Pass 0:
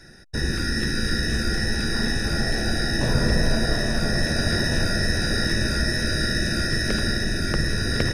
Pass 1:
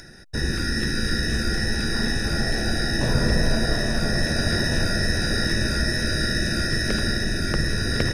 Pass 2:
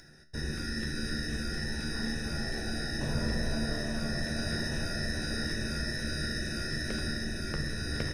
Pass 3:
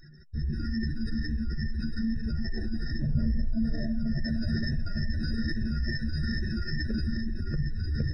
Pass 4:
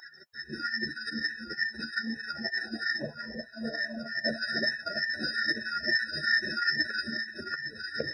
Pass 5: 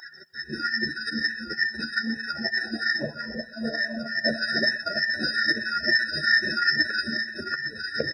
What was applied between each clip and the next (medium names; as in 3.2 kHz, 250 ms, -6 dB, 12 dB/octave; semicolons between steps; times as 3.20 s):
upward compressor, threshold -40 dBFS
feedback comb 75 Hz, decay 0.45 s, harmonics all, mix 70%; trim -4 dB
spectral contrast enhancement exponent 2.6; trim +5.5 dB
LFO high-pass sine 3.2 Hz 510–1600 Hz; trim +9 dB
delay 125 ms -19.5 dB; trim +5.5 dB